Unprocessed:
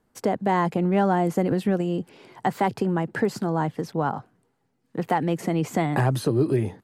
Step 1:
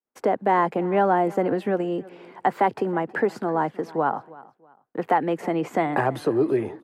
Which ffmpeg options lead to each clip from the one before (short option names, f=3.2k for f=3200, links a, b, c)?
-filter_complex "[0:a]agate=range=-33dB:threshold=-54dB:ratio=3:detection=peak,acrossover=split=270 2600:gain=0.158 1 0.224[a][b][c];[a][b][c]amix=inputs=3:normalize=0,aecho=1:1:321|642:0.0891|0.0258,volume=3.5dB"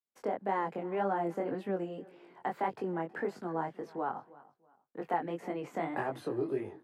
-af "flanger=delay=20:depth=4.7:speed=1.8,volume=-9dB"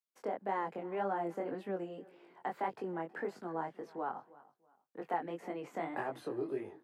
-af "lowshelf=f=110:g=-12,volume=-3dB"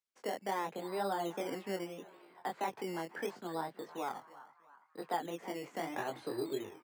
-filter_complex "[0:a]lowpass=8.4k,acrossover=split=660|4200[a][b][c];[a]acrusher=samples=14:mix=1:aa=0.000001:lfo=1:lforange=8.4:lforate=0.75[d];[b]asplit=6[e][f][g][h][i][j];[f]adelay=331,afreqshift=73,volume=-14.5dB[k];[g]adelay=662,afreqshift=146,volume=-20.5dB[l];[h]adelay=993,afreqshift=219,volume=-26.5dB[m];[i]adelay=1324,afreqshift=292,volume=-32.6dB[n];[j]adelay=1655,afreqshift=365,volume=-38.6dB[o];[e][k][l][m][n][o]amix=inputs=6:normalize=0[p];[d][p][c]amix=inputs=3:normalize=0"